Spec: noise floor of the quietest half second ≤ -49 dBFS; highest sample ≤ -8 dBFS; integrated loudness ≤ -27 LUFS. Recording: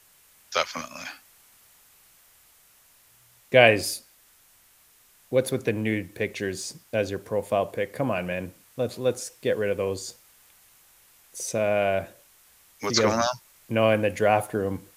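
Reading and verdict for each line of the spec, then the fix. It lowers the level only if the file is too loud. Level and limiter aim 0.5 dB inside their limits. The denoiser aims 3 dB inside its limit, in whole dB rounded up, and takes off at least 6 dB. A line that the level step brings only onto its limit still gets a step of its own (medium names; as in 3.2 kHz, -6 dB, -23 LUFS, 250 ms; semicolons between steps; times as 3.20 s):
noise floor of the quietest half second -59 dBFS: pass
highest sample -2.5 dBFS: fail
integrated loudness -25.5 LUFS: fail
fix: trim -2 dB; peak limiter -8.5 dBFS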